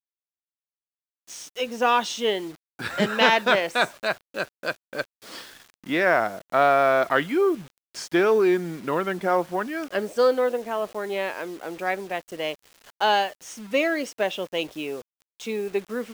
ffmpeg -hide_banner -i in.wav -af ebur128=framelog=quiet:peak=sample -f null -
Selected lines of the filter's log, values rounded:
Integrated loudness:
  I:         -24.2 LUFS
  Threshold: -34.8 LUFS
Loudness range:
  LRA:         4.9 LU
  Threshold: -44.6 LUFS
  LRA low:   -27.1 LUFS
  LRA high:  -22.2 LUFS
Sample peak:
  Peak:       -3.3 dBFS